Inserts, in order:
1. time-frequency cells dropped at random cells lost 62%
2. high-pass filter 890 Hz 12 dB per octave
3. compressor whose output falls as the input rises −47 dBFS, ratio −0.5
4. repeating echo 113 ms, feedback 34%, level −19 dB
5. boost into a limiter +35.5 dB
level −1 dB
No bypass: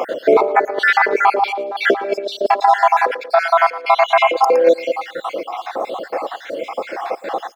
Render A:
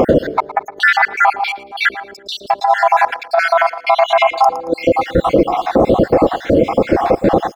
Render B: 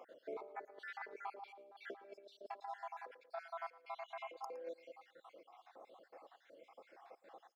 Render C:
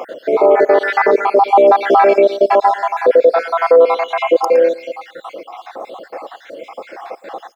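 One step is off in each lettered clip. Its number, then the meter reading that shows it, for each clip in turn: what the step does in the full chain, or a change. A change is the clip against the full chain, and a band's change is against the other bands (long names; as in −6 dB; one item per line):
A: 2, 250 Hz band +9.5 dB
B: 5, change in crest factor +6.5 dB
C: 3, change in crest factor −3.0 dB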